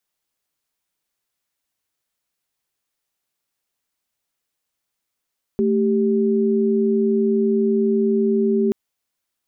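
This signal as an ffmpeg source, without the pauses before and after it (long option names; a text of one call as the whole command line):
ffmpeg -f lavfi -i "aevalsrc='0.126*(sin(2*PI*220*t)+sin(2*PI*392*t))':duration=3.13:sample_rate=44100" out.wav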